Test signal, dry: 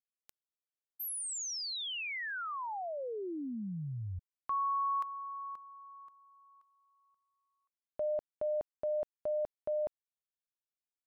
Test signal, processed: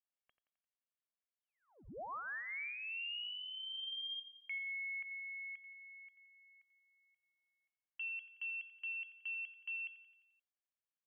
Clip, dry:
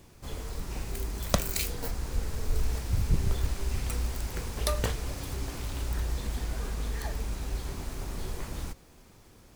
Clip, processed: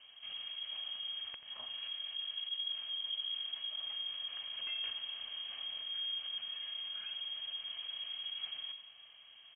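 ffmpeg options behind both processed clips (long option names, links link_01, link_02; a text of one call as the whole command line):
ffmpeg -i in.wav -af "aecho=1:1:1.9:0.39,aeval=exprs='0.75*(cos(1*acos(clip(val(0)/0.75,-1,1)))-cos(1*PI/2))+0.299*(cos(3*acos(clip(val(0)/0.75,-1,1)))-cos(3*PI/2))':channel_layout=same,acompressor=threshold=-51dB:ratio=3:attack=0.15:release=70:detection=rms,aecho=1:1:87|174|261|348|435|522:0.251|0.143|0.0816|0.0465|0.0265|0.0151,lowpass=frequency=2800:width_type=q:width=0.5098,lowpass=frequency=2800:width_type=q:width=0.6013,lowpass=frequency=2800:width_type=q:width=0.9,lowpass=frequency=2800:width_type=q:width=2.563,afreqshift=-3300,volume=10dB" out.wav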